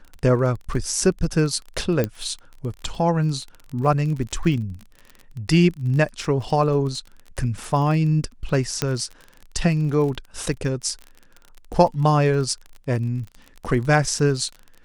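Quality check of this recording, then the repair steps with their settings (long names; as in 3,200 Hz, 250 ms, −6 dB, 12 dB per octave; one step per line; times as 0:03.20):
surface crackle 29 per second −30 dBFS
0:02.04: click −10 dBFS
0:08.82: click −6 dBFS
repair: click removal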